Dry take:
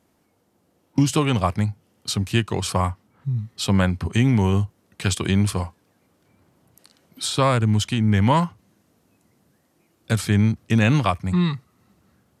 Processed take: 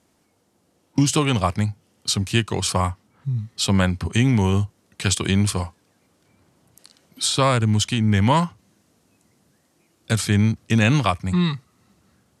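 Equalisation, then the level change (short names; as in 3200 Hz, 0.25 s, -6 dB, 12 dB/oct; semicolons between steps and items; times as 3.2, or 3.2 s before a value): LPF 9800 Hz 12 dB/oct; high shelf 3600 Hz +7.5 dB; 0.0 dB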